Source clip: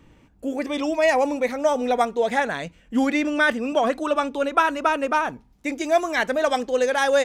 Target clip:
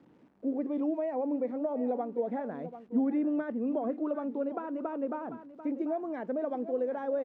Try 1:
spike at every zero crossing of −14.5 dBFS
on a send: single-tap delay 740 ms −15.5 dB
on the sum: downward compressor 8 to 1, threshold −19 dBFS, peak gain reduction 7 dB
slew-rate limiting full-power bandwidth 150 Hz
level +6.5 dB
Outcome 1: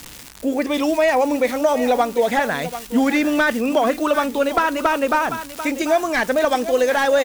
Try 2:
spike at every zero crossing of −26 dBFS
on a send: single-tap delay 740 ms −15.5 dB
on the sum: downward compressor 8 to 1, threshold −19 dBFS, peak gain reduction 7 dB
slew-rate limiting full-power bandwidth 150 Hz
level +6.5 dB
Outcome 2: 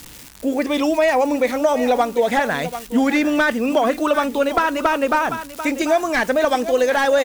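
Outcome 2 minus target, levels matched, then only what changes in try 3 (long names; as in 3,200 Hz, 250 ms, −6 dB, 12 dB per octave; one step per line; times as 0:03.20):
250 Hz band −4.0 dB
add after downward compressor: four-pole ladder band-pass 310 Hz, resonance 20%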